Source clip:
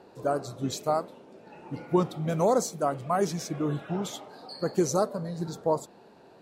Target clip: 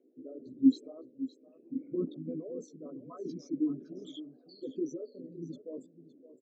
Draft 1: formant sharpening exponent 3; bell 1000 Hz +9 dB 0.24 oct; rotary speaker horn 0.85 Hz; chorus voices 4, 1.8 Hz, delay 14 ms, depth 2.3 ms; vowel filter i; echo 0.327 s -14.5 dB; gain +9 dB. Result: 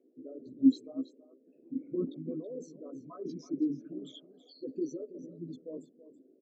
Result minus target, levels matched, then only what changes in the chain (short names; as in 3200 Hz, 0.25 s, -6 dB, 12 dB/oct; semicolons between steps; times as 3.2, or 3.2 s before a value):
echo 0.237 s early
change: echo 0.564 s -14.5 dB